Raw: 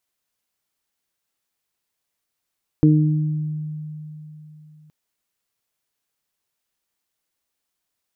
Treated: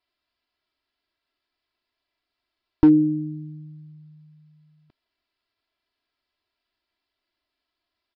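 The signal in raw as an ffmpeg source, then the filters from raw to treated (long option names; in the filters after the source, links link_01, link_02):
-f lavfi -i "aevalsrc='0.251*pow(10,-3*t/3.51)*sin(2*PI*153*t)+0.282*pow(10,-3*t/1.09)*sin(2*PI*306*t)+0.0596*pow(10,-3*t/0.49)*sin(2*PI*459*t)':duration=2.07:sample_rate=44100"
-af "aecho=1:1:3:0.88,aresample=11025,volume=8.5dB,asoftclip=hard,volume=-8.5dB,aresample=44100"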